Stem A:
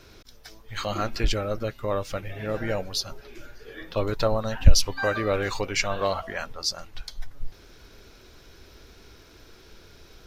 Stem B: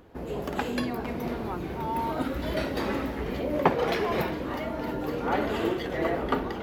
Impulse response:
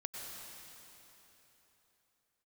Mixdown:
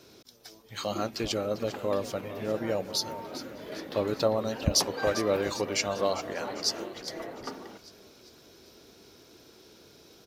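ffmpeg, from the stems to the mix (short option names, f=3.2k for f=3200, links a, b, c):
-filter_complex "[0:a]equalizer=f=1.7k:w=0.78:g=-8.5,volume=0.5dB,asplit=2[a][b];[b]volume=-13.5dB[c];[1:a]adelay=1150,volume=-12dB[d];[c]aecho=0:1:399|798|1197|1596|1995|2394|2793:1|0.51|0.26|0.133|0.0677|0.0345|0.0176[e];[a][d][e]amix=inputs=3:normalize=0,highpass=170"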